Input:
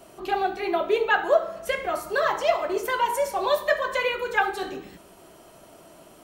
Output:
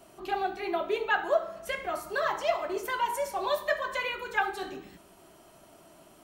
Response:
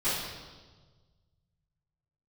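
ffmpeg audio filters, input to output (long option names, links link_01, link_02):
-af "equalizer=frequency=490:width_type=o:width=0.23:gain=-8,volume=-5dB"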